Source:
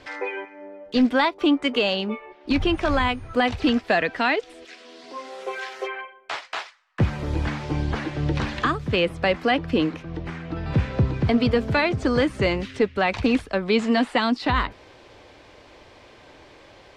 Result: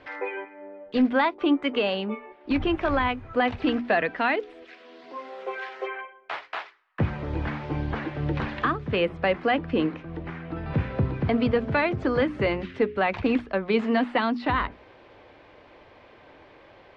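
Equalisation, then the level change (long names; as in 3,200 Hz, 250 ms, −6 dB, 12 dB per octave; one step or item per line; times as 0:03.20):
low-pass filter 2,600 Hz 12 dB per octave
low-shelf EQ 90 Hz −5.5 dB
mains-hum notches 60/120/180/240/300/360/420 Hz
−1.5 dB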